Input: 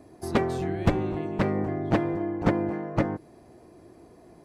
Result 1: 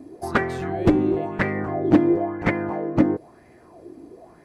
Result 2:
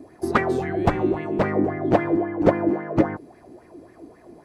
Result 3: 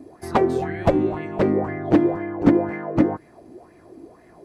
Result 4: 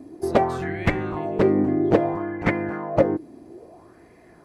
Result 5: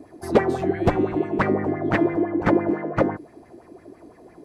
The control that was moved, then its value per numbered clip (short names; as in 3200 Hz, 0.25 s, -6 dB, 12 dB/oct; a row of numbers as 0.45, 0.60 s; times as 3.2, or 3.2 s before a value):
LFO bell, rate: 1, 3.7, 2, 0.6, 5.9 Hz